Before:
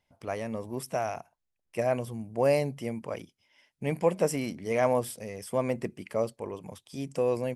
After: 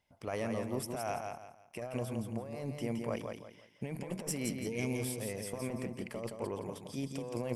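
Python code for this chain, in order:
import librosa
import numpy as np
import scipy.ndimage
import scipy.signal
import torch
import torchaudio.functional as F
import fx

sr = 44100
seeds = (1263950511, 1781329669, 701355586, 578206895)

p1 = fx.spec_box(x, sr, start_s=4.69, length_s=0.33, low_hz=490.0, high_hz=2100.0, gain_db=-22)
p2 = fx.cheby_harmonics(p1, sr, harmonics=(6, 8), levels_db=(-24, -37), full_scale_db=-10.5)
p3 = fx.over_compress(p2, sr, threshold_db=-33.0, ratio=-1.0)
p4 = p3 + fx.echo_feedback(p3, sr, ms=169, feedback_pct=31, wet_db=-5, dry=0)
y = p4 * 10.0 ** (-5.0 / 20.0)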